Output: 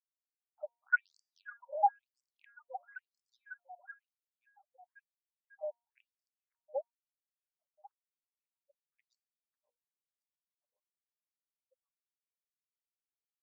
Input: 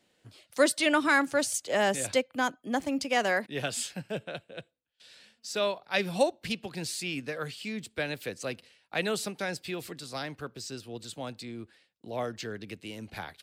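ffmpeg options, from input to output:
-filter_complex "[0:a]acrossover=split=3000[a][b];[b]acompressor=threshold=-48dB:ratio=4:attack=1:release=60[c];[a][c]amix=inputs=2:normalize=0,afftfilt=real='re*gte(hypot(re,im),0.398)':imag='im*gte(hypot(re,im),0.398)':win_size=1024:overlap=0.75,asplit=2[d][e];[e]alimiter=limit=-20dB:level=0:latency=1:release=245,volume=0.5dB[f];[d][f]amix=inputs=2:normalize=0,lowshelf=f=380:t=q:w=1.5:g=7,aphaser=in_gain=1:out_gain=1:delay=1.2:decay=0.75:speed=0.8:type=sinusoidal,bandreject=f=235.4:t=h:w=4,bandreject=f=470.8:t=h:w=4,bandreject=f=706.2:t=h:w=4,bandreject=f=941.6:t=h:w=4,bandreject=f=1.177k:t=h:w=4,bandreject=f=1.4124k:t=h:w=4,bandreject=f=1.6478k:t=h:w=4,bandreject=f=1.8832k:t=h:w=4,bandreject=f=2.1186k:t=h:w=4,bandreject=f=2.354k:t=h:w=4,bandreject=f=2.5894k:t=h:w=4,bandreject=f=2.8248k:t=h:w=4,bandreject=f=3.0602k:t=h:w=4,bandreject=f=3.2956k:t=h:w=4,bandreject=f=3.531k:t=h:w=4,bandreject=f=3.7664k:t=h:w=4,bandreject=f=4.0018k:t=h:w=4,bandreject=f=4.2372k:t=h:w=4,bandreject=f=4.4726k:t=h:w=4,bandreject=f=4.708k:t=h:w=4,bandreject=f=4.9434k:t=h:w=4,bandreject=f=5.1788k:t=h:w=4,bandreject=f=5.4142k:t=h:w=4,bandreject=f=5.6496k:t=h:w=4,bandreject=f=5.885k:t=h:w=4,bandreject=f=6.1204k:t=h:w=4,bandreject=f=6.3558k:t=h:w=4,bandreject=f=6.5912k:t=h:w=4,bandreject=f=6.8266k:t=h:w=4,bandreject=f=7.062k:t=h:w=4,bandreject=f=7.2974k:t=h:w=4,bandreject=f=7.5328k:t=h:w=4,bandreject=f=7.7682k:t=h:w=4,bandreject=f=8.0036k:t=h:w=4,bandreject=f=8.239k:t=h:w=4,asplit=2[g][h];[h]aecho=0:1:546|1092|1638|2184|2730:0.1|0.058|0.0336|0.0195|0.0113[i];[g][i]amix=inputs=2:normalize=0,dynaudnorm=f=930:g=7:m=11dB,equalizer=f=160:t=o:w=0.33:g=10,equalizer=f=250:t=o:w=0.33:g=3,equalizer=f=630:t=o:w=0.33:g=-7,equalizer=f=1.6k:t=o:w=0.33:g=7,equalizer=f=2.5k:t=o:w=0.33:g=11,equalizer=f=6.3k:t=o:w=0.33:g=-4,aresample=22050,aresample=44100,afftfilt=real='re*between(b*sr/1024,710*pow(6500/710,0.5+0.5*sin(2*PI*1*pts/sr))/1.41,710*pow(6500/710,0.5+0.5*sin(2*PI*1*pts/sr))*1.41)':imag='im*between(b*sr/1024,710*pow(6500/710,0.5+0.5*sin(2*PI*1*pts/sr))/1.41,710*pow(6500/710,0.5+0.5*sin(2*PI*1*pts/sr))*1.41)':win_size=1024:overlap=0.75"

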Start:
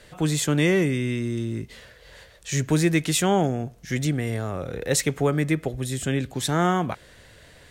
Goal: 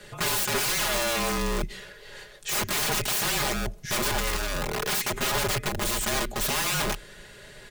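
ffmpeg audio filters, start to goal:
-af "aeval=exprs='(mod(18.8*val(0)+1,2)-1)/18.8':c=same,aecho=1:1:4.7:0.65,afreqshift=-35,volume=2.5dB"

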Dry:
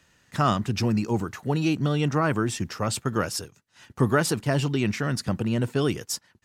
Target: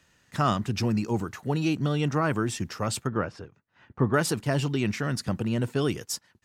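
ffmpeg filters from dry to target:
-filter_complex "[0:a]asettb=1/sr,asplit=3[a][b][c];[a]atrim=end=3.074[d];[b]atrim=start=3.07:end=4.14,asetpts=PTS-STARTPTS,afade=t=in:d=0.004:c=qsin,afade=t=out:st=1.066:d=0.004:c=qsin,lowpass=1.9k[e];[c]atrim=start=4.136[f];[d][e]acrossfade=d=0.004:c1=hsin:c2=qsin[g];[g][f]acrossfade=d=0.004:c1=qsin:c2=hsin,volume=-2dB"

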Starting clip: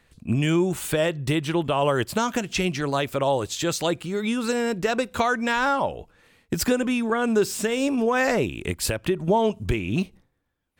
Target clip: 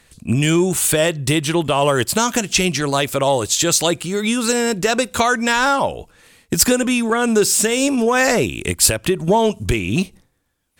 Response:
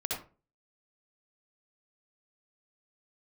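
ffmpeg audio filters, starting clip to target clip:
-af "equalizer=f=9.1k:t=o:w=2:g=11,acontrast=40"

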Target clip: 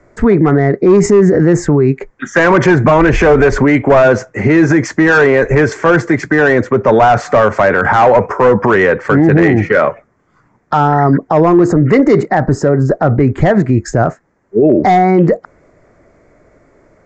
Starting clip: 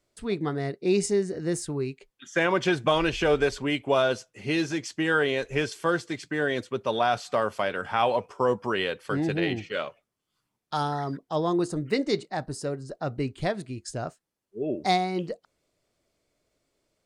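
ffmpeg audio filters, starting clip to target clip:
-filter_complex "[0:a]highshelf=f=2.4k:t=q:w=3:g=-6.5,acrossover=split=180|3400[a][b][c];[b]asoftclip=type=hard:threshold=-21.5dB[d];[a][d][c]amix=inputs=3:normalize=0,equalizer=f=4.1k:w=0.78:g=-14,aresample=16000,aresample=44100,alimiter=level_in=29.5dB:limit=-1dB:release=50:level=0:latency=1,volume=-1dB"

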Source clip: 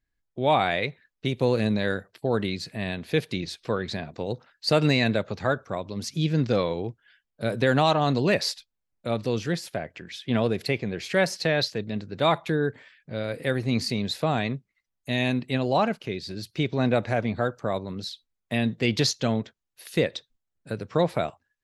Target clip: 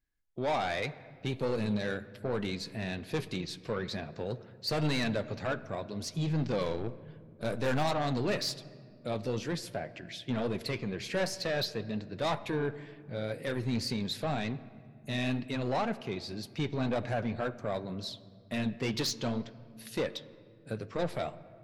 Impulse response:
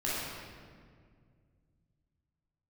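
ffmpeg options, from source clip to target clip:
-filter_complex "[0:a]asoftclip=type=tanh:threshold=-21.5dB,flanger=delay=2.6:depth=6.8:regen=-59:speed=2:shape=triangular,asettb=1/sr,asplit=3[a][b][c];[a]atrim=end=6.614[d];[b]atrim=start=6.61:end=7.84,asetpts=PTS-STARTPTS,afade=t=in:d=0.004:c=qsin,afade=t=out:st=1.226:d=0.004:c=qsin,aeval=exprs='0.0794*(cos(1*acos(clip(val(0)/0.0794,-1,1)))-cos(1*PI/2))+0.00447*(cos(5*acos(clip(val(0)/0.0794,-1,1)))-cos(5*PI/2))+0.00708*(cos(7*acos(clip(val(0)/0.0794,-1,1)))-cos(7*PI/2))+0.00501*(cos(8*acos(clip(val(0)/0.0794,-1,1)))-cos(8*PI/2))':c=same[e];[c]atrim=start=7.836[f];[d][e]acrossfade=d=0.004:c1=hsin:c2=qsin[g];[g][f]acrossfade=d=0.004:c1=qsin:c2=hsin,asplit=2[h][i];[i]aemphasis=mode=reproduction:type=50fm[j];[1:a]atrim=start_sample=2205,adelay=32[k];[j][k]afir=irnorm=-1:irlink=0,volume=-23dB[l];[h][l]amix=inputs=2:normalize=0"

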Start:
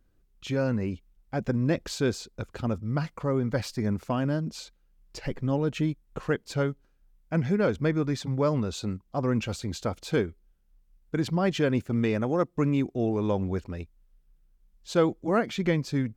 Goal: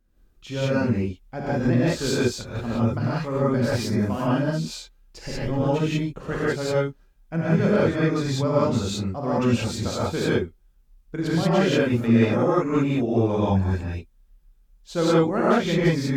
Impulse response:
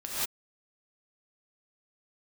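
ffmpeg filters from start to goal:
-filter_complex "[0:a]asettb=1/sr,asplit=3[a][b][c];[a]atrim=end=13.344[d];[b]atrim=start=13.34:end=13.8,asetpts=PTS-STARTPTS,afade=t=in:d=0.004:c=qsin,afade=t=out:st=0.456:d=0.004:c=qsin,aecho=1:1:1.2:0.61,atrim=end_sample=20286[e];[c]atrim=start=13.796[f];[d][e]acrossfade=d=0.004:c1=hsin:c2=qsin[g];[g][f]acrossfade=d=0.004:c1=qsin:c2=hsin[h];[1:a]atrim=start_sample=2205[i];[h][i]afir=irnorm=-1:irlink=0"

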